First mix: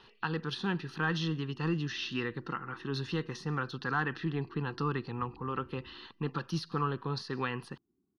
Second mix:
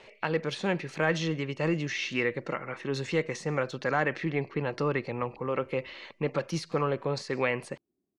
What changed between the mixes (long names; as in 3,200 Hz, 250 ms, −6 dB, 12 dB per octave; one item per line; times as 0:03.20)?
background −7.0 dB
master: remove phaser with its sweep stopped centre 2,200 Hz, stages 6